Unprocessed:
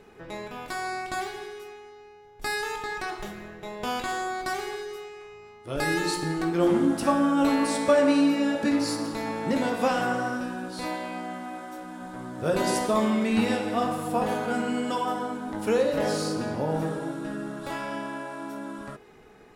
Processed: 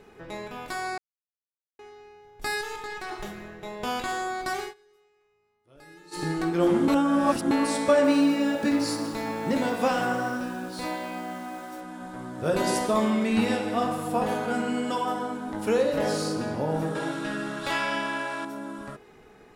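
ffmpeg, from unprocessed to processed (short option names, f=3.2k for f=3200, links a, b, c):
-filter_complex "[0:a]asettb=1/sr,asplit=3[a][b][c];[a]atrim=end=2.614[d];[b]atrim=start=2.61:end=3.11,asetpts=PTS-STARTPTS,afade=t=in:d=0.004:c=qsin,afade=t=out:st=0.496:d=0.004:c=qsin,aeval=exprs='(tanh(28.2*val(0)+0.6)-tanh(0.6))/28.2':c=same[e];[c]atrim=start=3.106[f];[d][e]acrossfade=d=0.004:c1=hsin:c2=qsin[g];[g][f]acrossfade=d=0.004:c1=qsin:c2=hsin,asettb=1/sr,asplit=3[h][i][j];[h]atrim=end=8.044[k];[i]atrim=start=8.04:end=11.81,asetpts=PTS-STARTPTS,afade=t=in:d=0.004:c=qsin,afade=t=out:st=3.766:d=0.004:c=qsin,acrusher=bits=7:mix=0:aa=0.5[l];[j]atrim=start=11.806[m];[k][l]acrossfade=d=0.004:c1=hsin:c2=qsin[n];[n][m]acrossfade=d=0.004:c1=qsin:c2=hsin,asettb=1/sr,asplit=3[o][p][q];[o]atrim=end=16.954[r];[p]atrim=start=16.95:end=18.45,asetpts=PTS-STARTPTS,afade=t=in:d=0.004:c=qsin,afade=t=out:st=1.496:d=0.004:c=qsin,equalizer=f=3.1k:w=0.4:g=11.5[s];[q]atrim=start=18.446[t];[r][s]acrossfade=d=0.004:c1=hsin:c2=qsin[u];[u][t]acrossfade=d=0.004:c1=qsin:c2=hsin,asplit=7[v][w][x][y][z][aa][ab];[v]atrim=end=0.98,asetpts=PTS-STARTPTS,afade=t=out:st=0.976:d=0.004:c=hsin[ac];[w]atrim=start=0.98:end=1.79,asetpts=PTS-STARTPTS,volume=0[ad];[x]atrim=start=1.79:end=4.74,asetpts=PTS-STARTPTS,afade=t=in:d=0.004:c=hsin,afade=t=out:st=2.81:d=0.14:c=qsin:silence=0.0630957[ae];[y]atrim=start=4.74:end=6.11,asetpts=PTS-STARTPTS,volume=-24dB[af];[z]atrim=start=6.11:end=6.882,asetpts=PTS-STARTPTS,afade=t=in:d=0.14:c=qsin:silence=0.0630957[ag];[aa]atrim=start=6.878:end=7.512,asetpts=PTS-STARTPTS,areverse[ah];[ab]atrim=start=7.508[ai];[ac][ad][ae][af][ag]concat=n=5:v=0:a=1[aj];[aj][ah]acrossfade=d=0.004:c1=hsin:c2=hsin[ak];[ak][ai]acrossfade=d=0.004:c1=hsin:c2=hsin"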